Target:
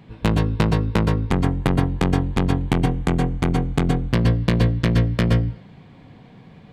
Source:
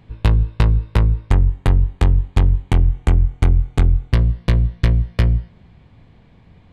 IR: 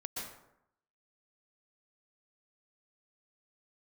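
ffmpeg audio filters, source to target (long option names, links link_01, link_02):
-filter_complex "[0:a]acontrast=67,lowshelf=frequency=110:width_type=q:width=1.5:gain=-11.5[link_01];[1:a]atrim=start_sample=2205,afade=type=out:start_time=0.18:duration=0.01,atrim=end_sample=8379[link_02];[link_01][link_02]afir=irnorm=-1:irlink=0,volume=1dB"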